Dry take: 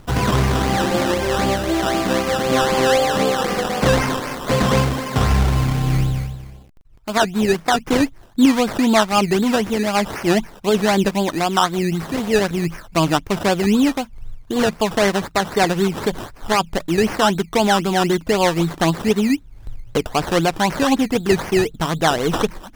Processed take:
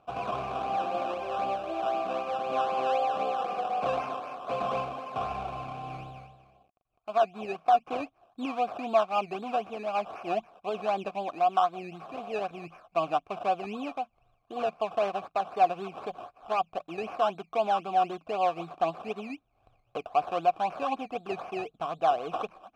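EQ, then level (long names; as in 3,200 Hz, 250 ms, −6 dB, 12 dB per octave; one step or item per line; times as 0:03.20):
formant filter a
low-shelf EQ 200 Hz +6 dB
−1.5 dB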